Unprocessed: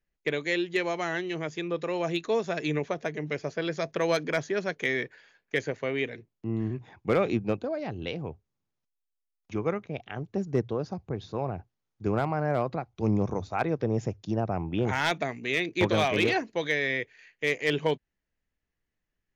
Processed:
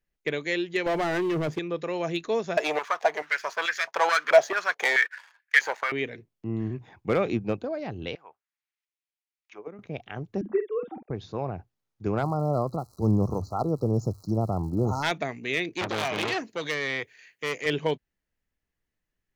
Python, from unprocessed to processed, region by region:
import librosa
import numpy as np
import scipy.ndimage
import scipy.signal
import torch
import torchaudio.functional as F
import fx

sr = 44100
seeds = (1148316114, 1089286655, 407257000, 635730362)

y = fx.chain(x, sr, fx.lowpass(hz=1100.0, slope=6),
    fx.leveller(passes=3), at=(0.86, 1.59))
y = fx.chain(y, sr, fx.leveller(passes=2),
    fx.filter_held_highpass(hz=4.6, low_hz=670.0, high_hz=1700.0), at=(2.57, 5.92))
y = fx.chain(y, sr, fx.tilt_eq(slope=4.5),
    fx.auto_wah(base_hz=240.0, top_hz=2200.0, q=2.2, full_db=-29.0, direction='down'), at=(8.15, 9.79))
y = fx.chain(y, sr, fx.sine_speech(),
    fx.doubler(ms=47.0, db=-8.5), at=(10.41, 11.1))
y = fx.low_shelf(y, sr, hz=150.0, db=7.0, at=(12.22, 15.02), fade=0.02)
y = fx.dmg_crackle(y, sr, seeds[0], per_s=310.0, level_db=-43.0, at=(12.22, 15.02), fade=0.02)
y = fx.brickwall_bandstop(y, sr, low_hz=1400.0, high_hz=3900.0, at=(12.22, 15.02), fade=0.02)
y = fx.chain(y, sr, fx.highpass(hz=78.0, slope=24),
    fx.high_shelf(hz=6100.0, db=11.0),
    fx.transformer_sat(knee_hz=2500.0), at=(15.75, 17.66))